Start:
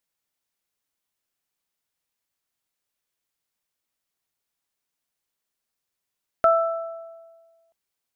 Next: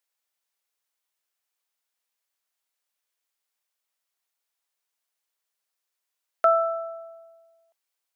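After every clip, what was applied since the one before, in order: HPF 520 Hz 12 dB/oct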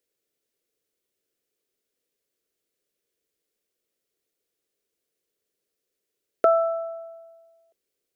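resonant low shelf 610 Hz +12 dB, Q 3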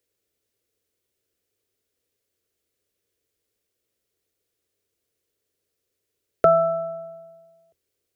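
octaver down 2 oct, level -2 dB; gain +2.5 dB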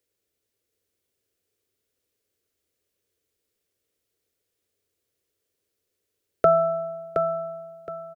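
feedback echo 0.719 s, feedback 26%, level -6 dB; gain -1.5 dB

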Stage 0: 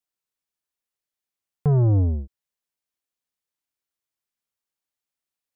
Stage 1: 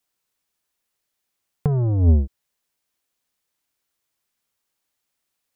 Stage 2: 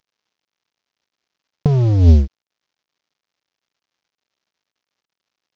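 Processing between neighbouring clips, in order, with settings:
negative-ratio compressor -21 dBFS, ratio -0.5; gain +6 dB
CVSD 32 kbps; gain +6 dB

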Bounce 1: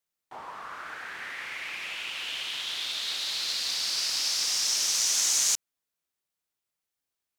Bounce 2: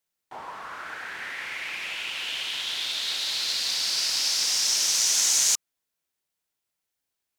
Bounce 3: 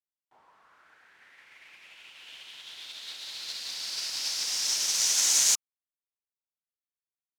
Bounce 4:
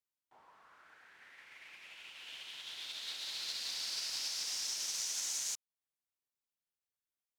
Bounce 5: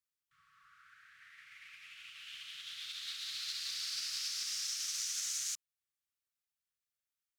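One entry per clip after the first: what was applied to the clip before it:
notch 1200 Hz, Q 16; gain +3 dB
upward expander 2.5:1, over -36 dBFS
compressor 8:1, threshold -34 dBFS, peak gain reduction 14.5 dB; gain -1.5 dB
brick-wall FIR band-stop 180–1100 Hz

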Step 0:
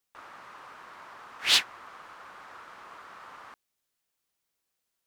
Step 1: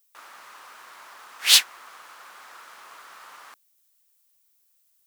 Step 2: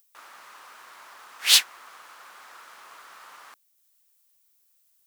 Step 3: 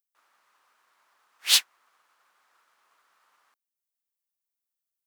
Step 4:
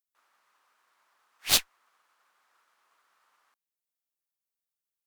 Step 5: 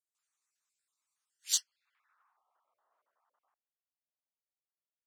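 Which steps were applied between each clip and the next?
RIAA curve recording
upward compressor, threshold -59 dBFS; gain -1.5 dB
upward expander 1.5:1, over -52 dBFS; gain -2.5 dB
added harmonics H 6 -20 dB, 7 -11 dB, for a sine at -5.5 dBFS; gain -2.5 dB
random spectral dropouts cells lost 30%; band-pass sweep 7700 Hz -> 670 Hz, 1.49–2.43

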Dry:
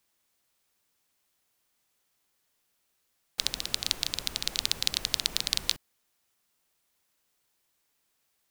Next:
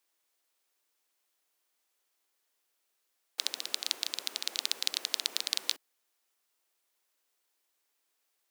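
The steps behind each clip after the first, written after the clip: HPF 300 Hz 24 dB/oct; gain -3.5 dB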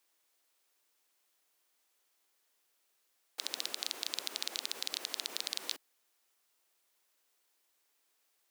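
limiter -16.5 dBFS, peak gain reduction 11 dB; gain +2.5 dB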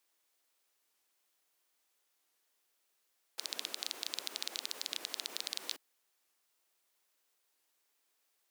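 record warp 45 rpm, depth 160 cents; gain -2 dB

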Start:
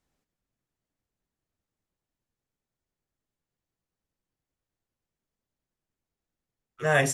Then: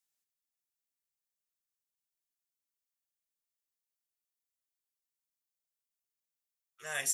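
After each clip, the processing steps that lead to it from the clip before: pre-emphasis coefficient 0.97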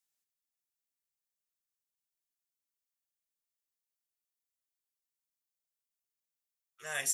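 nothing audible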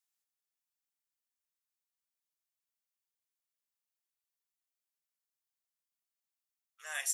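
HPF 710 Hz 24 dB/oct; gain -2 dB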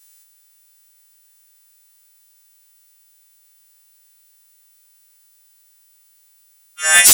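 frequency quantiser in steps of 2 st; sine folder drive 14 dB, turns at -9.5 dBFS; gain +6 dB

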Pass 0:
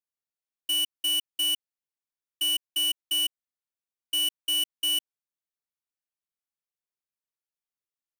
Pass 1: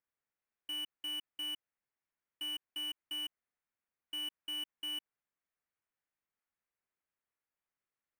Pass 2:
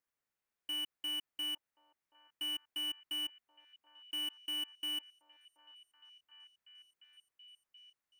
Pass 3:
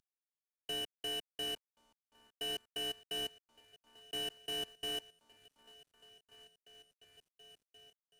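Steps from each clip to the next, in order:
resonant high shelf 3000 Hz -13.5 dB, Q 1.5; limiter -36.5 dBFS, peak gain reduction 10 dB; gain +3.5 dB
delay with a stepping band-pass 0.728 s, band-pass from 740 Hz, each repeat 0.7 oct, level -11 dB; gain +1.5 dB
CVSD 64 kbps; in parallel at -6 dB: sample-and-hold 39×; on the sum: gain -2 dB

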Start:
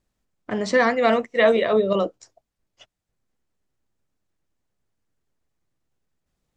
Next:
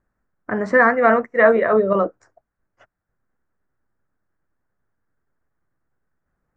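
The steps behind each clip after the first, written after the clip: resonant high shelf 2300 Hz -13.5 dB, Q 3; gain +2 dB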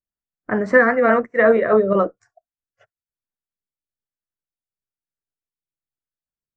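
spectral noise reduction 26 dB; rotary speaker horn 5 Hz, later 1.1 Hz, at 1.57; gain +3 dB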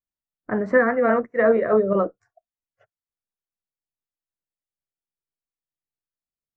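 high shelf 2200 Hz -10.5 dB; gain -2.5 dB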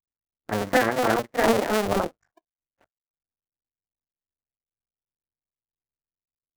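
cycle switcher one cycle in 2, muted

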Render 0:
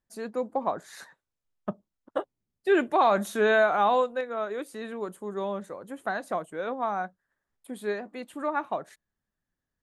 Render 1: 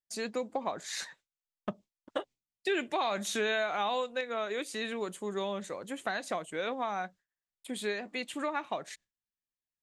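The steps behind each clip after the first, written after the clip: gate with hold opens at -53 dBFS; band shelf 4000 Hz +11.5 dB 2.3 oct; compressor 3:1, threshold -31 dBFS, peak gain reduction 11 dB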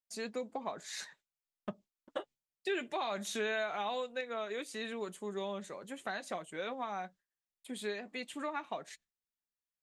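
flange 0.23 Hz, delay 4.3 ms, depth 1 ms, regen -56%; gain -1 dB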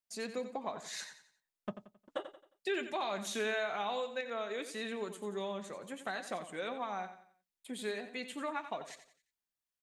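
feedback echo 89 ms, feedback 37%, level -11 dB

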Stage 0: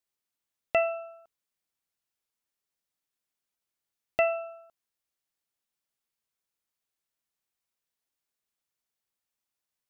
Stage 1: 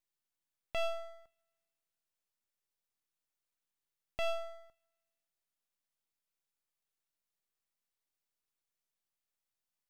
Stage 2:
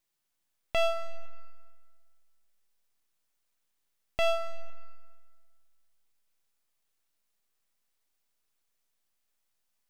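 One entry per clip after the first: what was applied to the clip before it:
limiter -24.5 dBFS, peak gain reduction 10 dB; two-slope reverb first 0.45 s, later 1.6 s, from -19 dB, DRR 19.5 dB; half-wave rectifier
digital reverb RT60 1.8 s, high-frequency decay 0.8×, pre-delay 0.105 s, DRR 16 dB; gain +8 dB

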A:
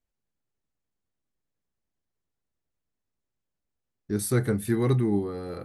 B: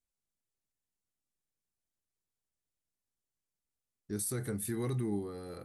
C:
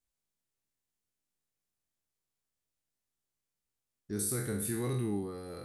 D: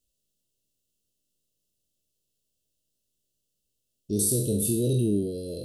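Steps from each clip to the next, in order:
bell 9400 Hz +11 dB 1.6 oct; limiter -17.5 dBFS, peak gain reduction 8.5 dB; gain -9 dB
spectral trails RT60 0.64 s
brick-wall FIR band-stop 670–2600 Hz; gain +9 dB

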